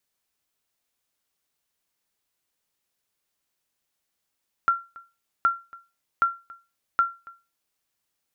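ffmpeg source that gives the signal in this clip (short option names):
-f lavfi -i "aevalsrc='0.237*(sin(2*PI*1370*mod(t,0.77))*exp(-6.91*mod(t,0.77)/0.28)+0.0708*sin(2*PI*1370*max(mod(t,0.77)-0.28,0))*exp(-6.91*max(mod(t,0.77)-0.28,0)/0.28))':d=3.08:s=44100"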